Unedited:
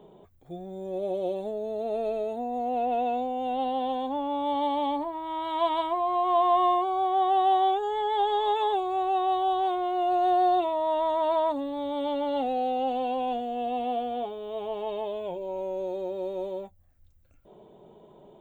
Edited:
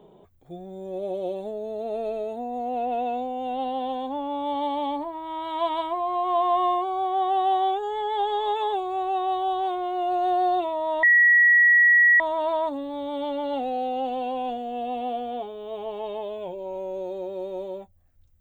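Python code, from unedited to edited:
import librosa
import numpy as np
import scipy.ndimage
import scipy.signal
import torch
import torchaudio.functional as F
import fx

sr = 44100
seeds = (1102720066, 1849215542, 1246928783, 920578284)

y = fx.edit(x, sr, fx.insert_tone(at_s=11.03, length_s=1.17, hz=1920.0, db=-13.0), tone=tone)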